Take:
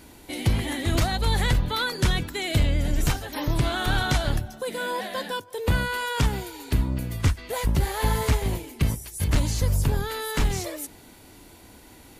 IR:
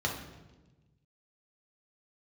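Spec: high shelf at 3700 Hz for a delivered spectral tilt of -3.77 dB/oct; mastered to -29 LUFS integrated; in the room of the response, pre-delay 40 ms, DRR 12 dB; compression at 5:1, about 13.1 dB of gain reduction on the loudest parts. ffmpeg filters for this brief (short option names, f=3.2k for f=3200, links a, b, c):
-filter_complex "[0:a]highshelf=f=3.7k:g=8,acompressor=threshold=-32dB:ratio=5,asplit=2[a][b];[1:a]atrim=start_sample=2205,adelay=40[c];[b][c]afir=irnorm=-1:irlink=0,volume=-19.5dB[d];[a][d]amix=inputs=2:normalize=0,volume=5.5dB"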